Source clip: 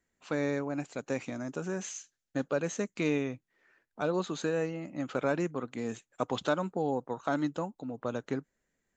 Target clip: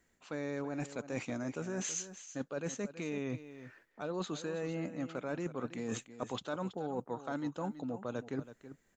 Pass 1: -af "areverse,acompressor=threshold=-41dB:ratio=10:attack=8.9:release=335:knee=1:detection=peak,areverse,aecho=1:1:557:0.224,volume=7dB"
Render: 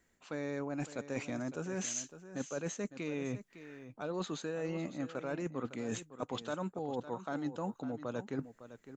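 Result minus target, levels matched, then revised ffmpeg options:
echo 0.231 s late
-af "areverse,acompressor=threshold=-41dB:ratio=10:attack=8.9:release=335:knee=1:detection=peak,areverse,aecho=1:1:326:0.224,volume=7dB"

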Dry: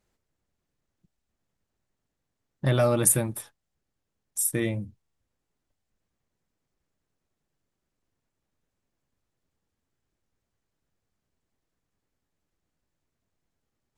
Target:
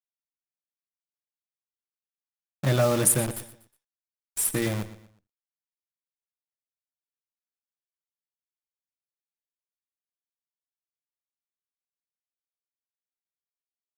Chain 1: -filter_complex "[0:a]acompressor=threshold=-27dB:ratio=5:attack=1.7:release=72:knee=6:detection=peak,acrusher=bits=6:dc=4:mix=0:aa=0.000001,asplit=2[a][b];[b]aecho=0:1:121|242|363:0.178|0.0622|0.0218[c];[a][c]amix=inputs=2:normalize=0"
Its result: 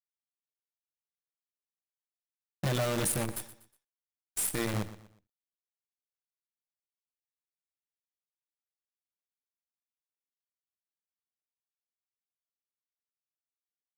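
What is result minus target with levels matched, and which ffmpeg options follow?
compressor: peak gain reduction +13 dB
-filter_complex "[0:a]acrusher=bits=6:dc=4:mix=0:aa=0.000001,asplit=2[a][b];[b]aecho=0:1:121|242|363:0.178|0.0622|0.0218[c];[a][c]amix=inputs=2:normalize=0"

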